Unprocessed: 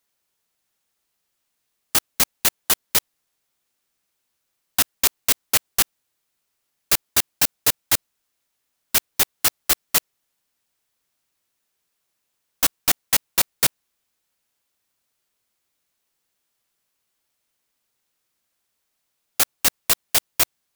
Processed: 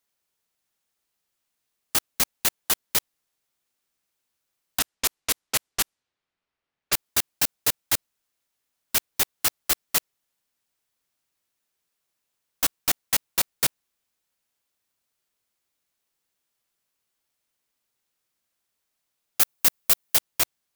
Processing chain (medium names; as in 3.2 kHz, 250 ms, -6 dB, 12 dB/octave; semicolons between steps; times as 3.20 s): 4.79–6.93 s: level-controlled noise filter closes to 2.8 kHz, open at -16.5 dBFS; 19.40–20.17 s: treble shelf 11 kHz +8 dB; hard clipper -7.5 dBFS, distortion -16 dB; trim -4 dB